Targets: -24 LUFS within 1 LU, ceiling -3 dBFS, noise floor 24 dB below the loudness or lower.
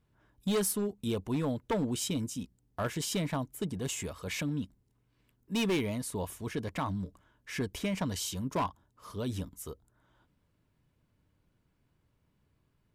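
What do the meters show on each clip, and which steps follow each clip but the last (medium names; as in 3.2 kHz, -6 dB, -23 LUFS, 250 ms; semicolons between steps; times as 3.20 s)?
clipped samples 1.2%; clipping level -25.5 dBFS; loudness -34.5 LUFS; peak level -25.5 dBFS; loudness target -24.0 LUFS
-> clip repair -25.5 dBFS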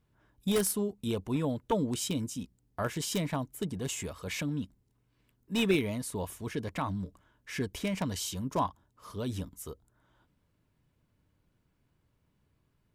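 clipped samples 0.0%; loudness -33.5 LUFS; peak level -16.5 dBFS; loudness target -24.0 LUFS
-> trim +9.5 dB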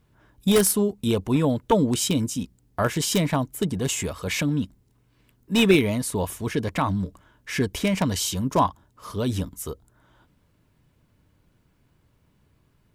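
loudness -24.0 LUFS; peak level -7.0 dBFS; noise floor -65 dBFS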